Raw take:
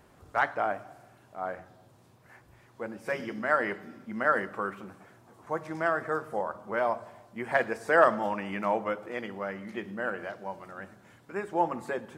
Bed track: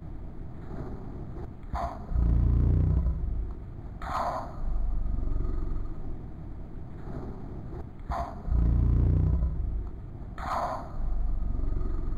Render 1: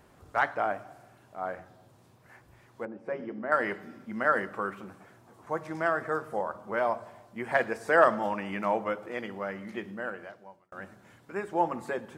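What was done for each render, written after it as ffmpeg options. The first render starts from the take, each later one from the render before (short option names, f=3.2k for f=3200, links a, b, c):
-filter_complex "[0:a]asettb=1/sr,asplit=3[a][b][c];[a]atrim=end=2.854[d];[b]atrim=start=2.85:end=3.52,asetpts=PTS-STARTPTS,afade=t=in:d=0.004:c=qsin,afade=t=out:st=0.666:d=0.004:c=qsin,bandpass=f=380:t=q:w=0.65[e];[c]atrim=start=3.516[f];[d][e]acrossfade=d=0.004:c1=hsin:c2=qsin[g];[g][f]acrossfade=d=0.004:c1=qsin:c2=hsin,asplit=2[h][i];[h]atrim=end=10.72,asetpts=PTS-STARTPTS,afade=t=out:st=9.75:d=0.97[j];[i]atrim=start=10.72,asetpts=PTS-STARTPTS,afade=t=in:d=0.004:c=hsin[k];[j][k]concat=n=2:v=0:a=1"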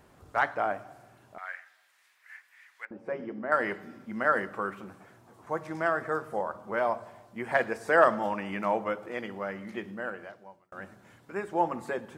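-filter_complex "[0:a]asettb=1/sr,asplit=3[a][b][c];[a]atrim=end=1.384[d];[b]atrim=start=1.38:end=2.91,asetpts=PTS-STARTPTS,afade=t=in:d=0.004:c=qsin,afade=t=out:st=1.526:d=0.004:c=qsin,highpass=f=1.9k:t=q:w=3.3[e];[c]atrim=start=2.906[f];[d][e]acrossfade=d=0.004:c1=hsin:c2=qsin[g];[g][f]acrossfade=d=0.004:c1=qsin:c2=hsin"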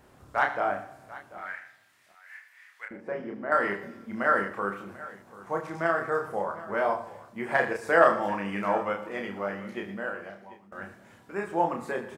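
-filter_complex "[0:a]asplit=2[a][b];[b]adelay=30,volume=-3.5dB[c];[a][c]amix=inputs=2:normalize=0,aecho=1:1:75|119|739:0.2|0.133|0.126"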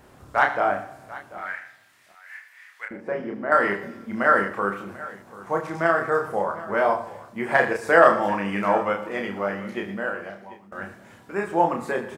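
-af "volume=5.5dB,alimiter=limit=-2dB:level=0:latency=1"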